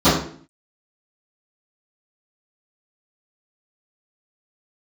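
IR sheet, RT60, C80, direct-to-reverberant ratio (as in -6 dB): 0.50 s, 8.0 dB, -18.5 dB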